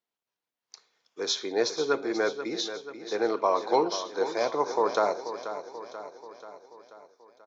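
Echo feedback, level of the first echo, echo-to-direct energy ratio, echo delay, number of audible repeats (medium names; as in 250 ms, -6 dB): 56%, -11.0 dB, -9.5 dB, 485 ms, 5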